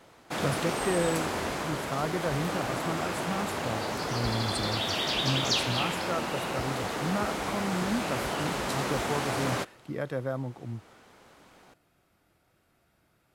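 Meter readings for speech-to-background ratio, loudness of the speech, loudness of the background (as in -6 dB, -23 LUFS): -3.5 dB, -34.5 LUFS, -31.0 LUFS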